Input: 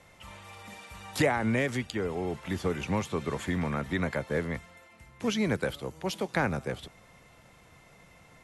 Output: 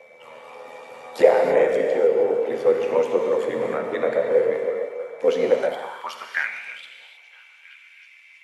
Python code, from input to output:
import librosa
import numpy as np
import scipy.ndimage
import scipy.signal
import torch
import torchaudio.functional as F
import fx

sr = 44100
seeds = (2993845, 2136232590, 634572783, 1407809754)

p1 = fx.spec_quant(x, sr, step_db=15)
p2 = fx.peak_eq(p1, sr, hz=110.0, db=6.0, octaves=1.9)
p3 = p2 * np.sin(2.0 * np.pi * 40.0 * np.arange(len(p2)) / sr)
p4 = fx.high_shelf(p3, sr, hz=3300.0, db=-8.5)
p5 = p4 + fx.echo_stepped(p4, sr, ms=321, hz=430.0, octaves=0.7, feedback_pct=70, wet_db=-9.5, dry=0)
p6 = fx.rev_gated(p5, sr, seeds[0], gate_ms=340, shape='flat', drr_db=1.5)
p7 = fx.filter_sweep_highpass(p6, sr, from_hz=490.0, to_hz=2500.0, start_s=5.5, end_s=6.61, q=5.3)
p8 = p7 + 10.0 ** (-56.0 / 20.0) * np.sin(2.0 * np.pi * 2300.0 * np.arange(len(p7)) / sr)
y = p8 * 10.0 ** (4.5 / 20.0)